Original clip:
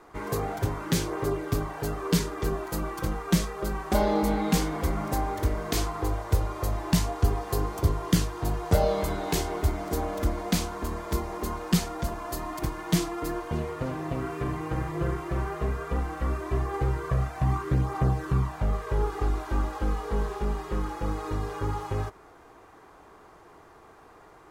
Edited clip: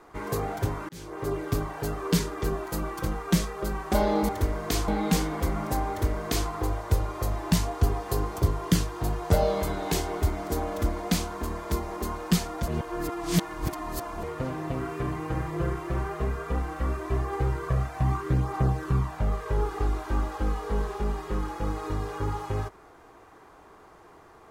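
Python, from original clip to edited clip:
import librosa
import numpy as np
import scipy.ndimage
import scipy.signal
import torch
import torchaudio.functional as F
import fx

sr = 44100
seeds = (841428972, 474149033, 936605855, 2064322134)

y = fx.edit(x, sr, fx.fade_in_span(start_s=0.89, length_s=0.5),
    fx.duplicate(start_s=5.31, length_s=0.59, to_s=4.29),
    fx.reverse_span(start_s=12.09, length_s=1.55), tone=tone)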